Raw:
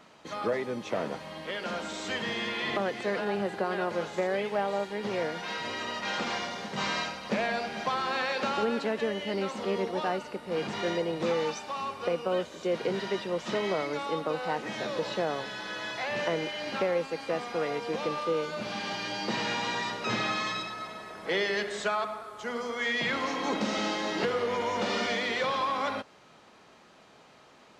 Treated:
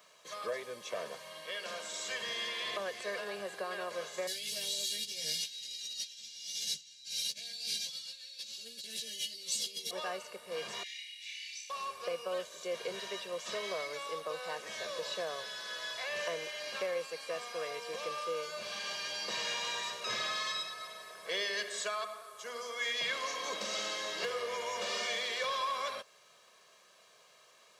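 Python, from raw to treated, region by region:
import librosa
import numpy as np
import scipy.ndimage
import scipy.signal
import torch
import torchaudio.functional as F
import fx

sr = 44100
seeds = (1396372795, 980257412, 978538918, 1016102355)

y = fx.chain(x, sr, fx.curve_eq(hz=(180.0, 1100.0, 1800.0, 4000.0), db=(0, -29, -13, 10)),
    fx.over_compress(threshold_db=-40.0, ratio=-0.5),
    fx.doubler(ms=13.0, db=-2.5), at=(4.27, 9.91))
y = fx.chain(y, sr, fx.steep_highpass(hz=2000.0, slope=72),
    fx.high_shelf(hz=5300.0, db=-11.5),
    fx.room_flutter(wall_m=5.1, rt60_s=0.56), at=(10.83, 11.7))
y = scipy.signal.sosfilt(scipy.signal.butter(2, 55.0, 'highpass', fs=sr, output='sos'), y)
y = fx.riaa(y, sr, side='recording')
y = y + 0.67 * np.pad(y, (int(1.8 * sr / 1000.0), 0))[:len(y)]
y = F.gain(torch.from_numpy(y), -9.0).numpy()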